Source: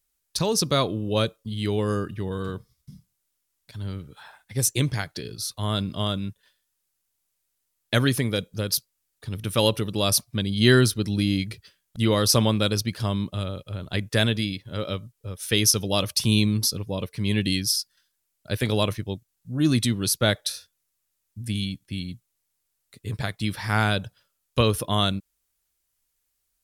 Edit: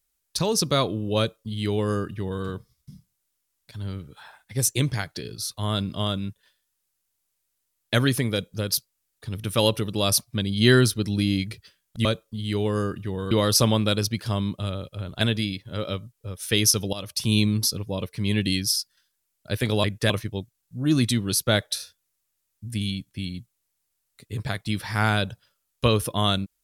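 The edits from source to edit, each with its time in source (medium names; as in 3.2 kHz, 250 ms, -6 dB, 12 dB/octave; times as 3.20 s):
1.18–2.44 s: copy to 12.05 s
13.95–14.21 s: move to 18.84 s
15.93–16.39 s: fade in, from -15 dB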